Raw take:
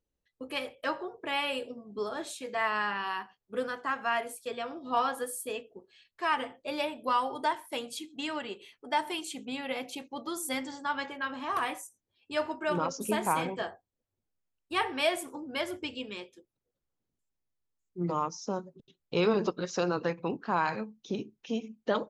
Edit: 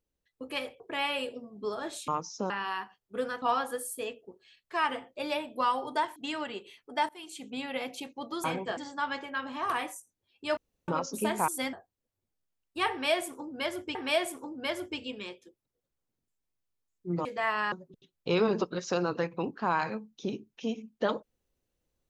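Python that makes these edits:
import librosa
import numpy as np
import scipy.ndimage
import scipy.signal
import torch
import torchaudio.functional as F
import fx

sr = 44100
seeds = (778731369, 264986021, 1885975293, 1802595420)

y = fx.edit(x, sr, fx.cut(start_s=0.8, length_s=0.34),
    fx.swap(start_s=2.42, length_s=0.47, other_s=18.16, other_length_s=0.42),
    fx.cut(start_s=3.81, length_s=1.09),
    fx.cut(start_s=7.64, length_s=0.47),
    fx.fade_in_from(start_s=9.04, length_s=0.46, floor_db=-22.5),
    fx.swap(start_s=10.39, length_s=0.25, other_s=13.35, other_length_s=0.33),
    fx.room_tone_fill(start_s=12.44, length_s=0.31),
    fx.repeat(start_s=14.86, length_s=1.04, count=2), tone=tone)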